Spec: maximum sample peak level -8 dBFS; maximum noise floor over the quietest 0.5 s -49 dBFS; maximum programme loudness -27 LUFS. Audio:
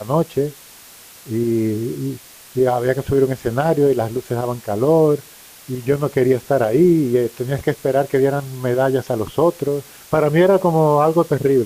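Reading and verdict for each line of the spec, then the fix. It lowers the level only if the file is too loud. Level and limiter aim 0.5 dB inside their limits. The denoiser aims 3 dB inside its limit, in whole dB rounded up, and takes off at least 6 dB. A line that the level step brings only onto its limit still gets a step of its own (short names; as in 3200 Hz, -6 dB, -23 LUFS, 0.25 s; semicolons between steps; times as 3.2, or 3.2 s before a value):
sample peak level -4.5 dBFS: fail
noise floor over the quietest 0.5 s -43 dBFS: fail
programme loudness -18.0 LUFS: fail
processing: gain -9.5 dB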